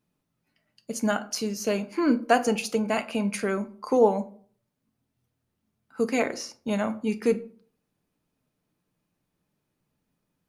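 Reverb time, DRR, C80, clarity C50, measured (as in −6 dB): 0.45 s, 8.5 dB, 21.5 dB, 17.0 dB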